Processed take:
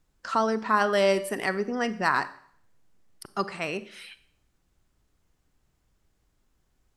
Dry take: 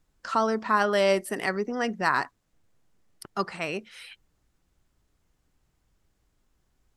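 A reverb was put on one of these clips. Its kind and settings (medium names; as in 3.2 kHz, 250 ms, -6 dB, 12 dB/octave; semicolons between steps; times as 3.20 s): Schroeder reverb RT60 0.61 s, combs from 29 ms, DRR 14 dB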